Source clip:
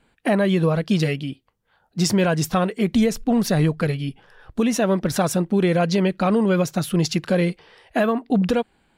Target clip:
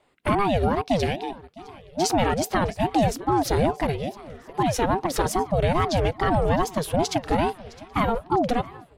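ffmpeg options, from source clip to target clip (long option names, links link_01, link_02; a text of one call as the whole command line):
ffmpeg -i in.wav -filter_complex "[0:a]asplit=2[link_01][link_02];[link_02]aecho=0:1:660|1320|1980|2640:0.0944|0.0453|0.0218|0.0104[link_03];[link_01][link_03]amix=inputs=2:normalize=0,aeval=exprs='val(0)*sin(2*PI*420*n/s+420*0.45/2.4*sin(2*PI*2.4*n/s))':channel_layout=same" out.wav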